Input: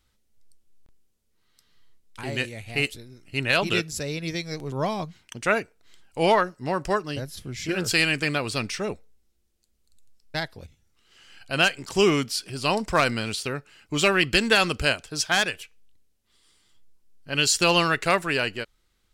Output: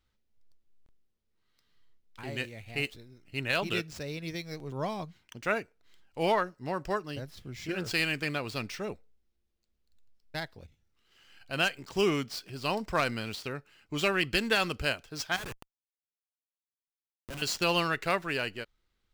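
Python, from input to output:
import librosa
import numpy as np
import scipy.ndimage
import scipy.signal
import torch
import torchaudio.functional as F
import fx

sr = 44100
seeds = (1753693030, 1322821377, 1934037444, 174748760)

y = scipy.signal.medfilt(x, 5)
y = fx.schmitt(y, sr, flips_db=-33.5, at=(15.36, 17.42))
y = y * librosa.db_to_amplitude(-7.0)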